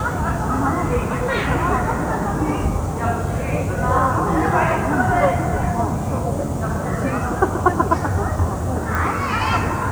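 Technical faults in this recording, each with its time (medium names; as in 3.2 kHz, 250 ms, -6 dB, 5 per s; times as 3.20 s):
8.95 s: pop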